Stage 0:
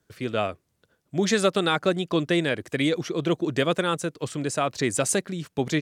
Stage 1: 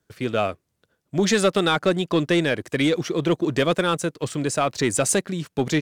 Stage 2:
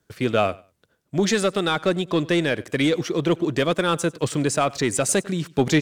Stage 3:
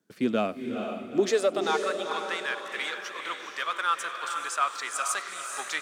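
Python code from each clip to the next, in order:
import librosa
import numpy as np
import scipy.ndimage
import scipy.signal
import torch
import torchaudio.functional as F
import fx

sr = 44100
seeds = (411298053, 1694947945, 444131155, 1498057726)

y1 = fx.leveller(x, sr, passes=1)
y2 = fx.rider(y1, sr, range_db=10, speed_s=0.5)
y2 = fx.echo_feedback(y2, sr, ms=97, feedback_pct=20, wet_db=-22.5)
y3 = fx.filter_sweep_highpass(y2, sr, from_hz=220.0, to_hz=1200.0, start_s=0.98, end_s=1.92, q=2.9)
y3 = fx.echo_diffused(y3, sr, ms=452, feedback_pct=43, wet_db=-5.5)
y3 = F.gain(torch.from_numpy(y3), -8.5).numpy()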